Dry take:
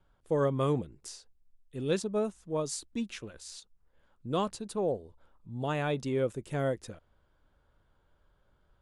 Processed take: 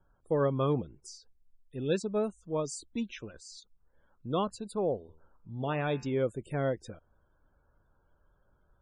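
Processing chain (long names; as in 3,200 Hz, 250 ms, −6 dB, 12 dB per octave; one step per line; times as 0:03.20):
spectral peaks only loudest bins 64
0:04.99–0:06.14: hum removal 79.41 Hz, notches 39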